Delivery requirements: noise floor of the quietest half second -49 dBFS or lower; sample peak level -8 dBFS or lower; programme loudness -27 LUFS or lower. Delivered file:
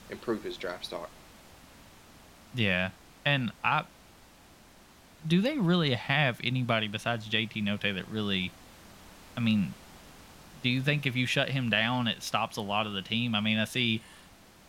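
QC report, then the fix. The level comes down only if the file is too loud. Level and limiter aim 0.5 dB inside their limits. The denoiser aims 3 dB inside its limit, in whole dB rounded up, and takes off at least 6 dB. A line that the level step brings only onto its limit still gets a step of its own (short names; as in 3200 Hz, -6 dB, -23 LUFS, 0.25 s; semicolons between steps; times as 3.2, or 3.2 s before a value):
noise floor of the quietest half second -56 dBFS: OK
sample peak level -11.5 dBFS: OK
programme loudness -29.5 LUFS: OK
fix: none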